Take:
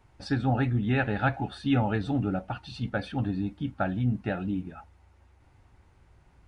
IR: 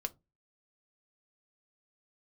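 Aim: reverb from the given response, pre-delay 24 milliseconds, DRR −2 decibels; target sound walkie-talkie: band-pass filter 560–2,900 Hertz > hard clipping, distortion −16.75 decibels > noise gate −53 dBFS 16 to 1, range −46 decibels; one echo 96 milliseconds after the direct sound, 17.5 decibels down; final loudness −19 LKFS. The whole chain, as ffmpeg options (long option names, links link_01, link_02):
-filter_complex "[0:a]aecho=1:1:96:0.133,asplit=2[link_01][link_02];[1:a]atrim=start_sample=2205,adelay=24[link_03];[link_02][link_03]afir=irnorm=-1:irlink=0,volume=2dB[link_04];[link_01][link_04]amix=inputs=2:normalize=0,highpass=560,lowpass=2900,asoftclip=type=hard:threshold=-20dB,agate=range=-46dB:threshold=-53dB:ratio=16,volume=14dB"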